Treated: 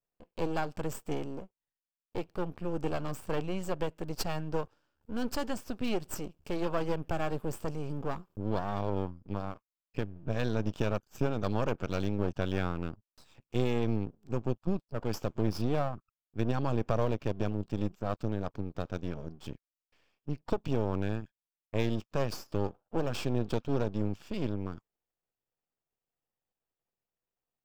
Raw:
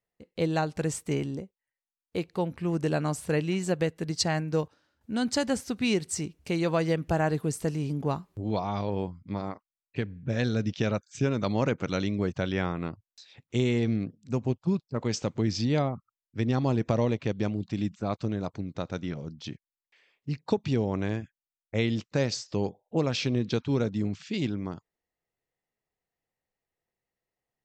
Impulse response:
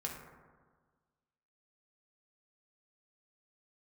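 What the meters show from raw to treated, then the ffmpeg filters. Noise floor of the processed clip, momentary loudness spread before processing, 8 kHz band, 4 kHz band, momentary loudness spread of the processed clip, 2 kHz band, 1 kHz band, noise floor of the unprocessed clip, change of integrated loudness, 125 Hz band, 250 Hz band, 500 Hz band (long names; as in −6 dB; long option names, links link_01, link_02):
below −85 dBFS, 10 LU, −10.5 dB, −8.5 dB, 10 LU, −6.5 dB, −3.0 dB, below −85 dBFS, −5.0 dB, −5.0 dB, −6.0 dB, −4.0 dB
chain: -af "aeval=exprs='max(val(0),0)':channel_layout=same,equalizer=frequency=2000:width_type=o:width=0.33:gain=-9,equalizer=frequency=4000:width_type=o:width=0.33:gain=-8,equalizer=frequency=6300:width_type=o:width=0.33:gain=-6,equalizer=frequency=10000:width_type=o:width=0.33:gain=-12"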